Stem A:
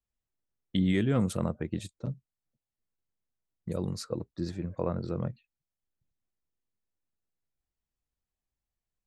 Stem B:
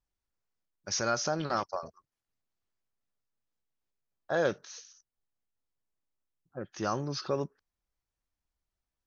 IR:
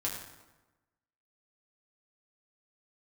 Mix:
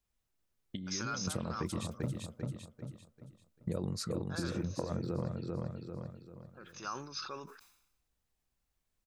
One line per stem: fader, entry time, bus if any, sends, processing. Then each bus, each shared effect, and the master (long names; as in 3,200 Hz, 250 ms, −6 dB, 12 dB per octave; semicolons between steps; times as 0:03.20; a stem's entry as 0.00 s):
+2.5 dB, 0.00 s, no send, echo send −6 dB, compressor whose output falls as the input rises −32 dBFS, ratio −0.5
−5.0 dB, 0.00 s, no send, no echo send, high-pass filter 1,200 Hz 6 dB per octave; comb filter 0.8 ms, depth 55%; level that may fall only so fast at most 74 dB per second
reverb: not used
echo: repeating echo 393 ms, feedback 37%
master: downward compressor 3 to 1, threshold −34 dBFS, peak gain reduction 9 dB